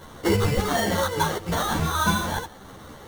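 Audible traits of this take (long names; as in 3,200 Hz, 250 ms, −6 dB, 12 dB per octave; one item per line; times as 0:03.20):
a quantiser's noise floor 8 bits, dither triangular
phaser sweep stages 4, 1.1 Hz, lowest notch 760–2,200 Hz
aliases and images of a low sample rate 2,500 Hz, jitter 0%
a shimmering, thickened sound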